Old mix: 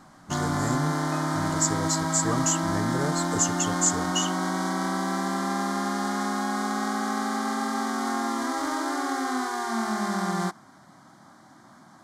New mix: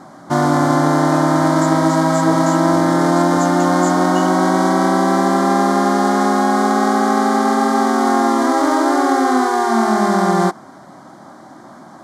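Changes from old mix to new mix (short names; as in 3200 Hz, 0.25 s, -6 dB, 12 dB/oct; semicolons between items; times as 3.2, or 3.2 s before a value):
speech -8.5 dB; first sound +7.0 dB; master: add bell 480 Hz +11.5 dB 1.9 oct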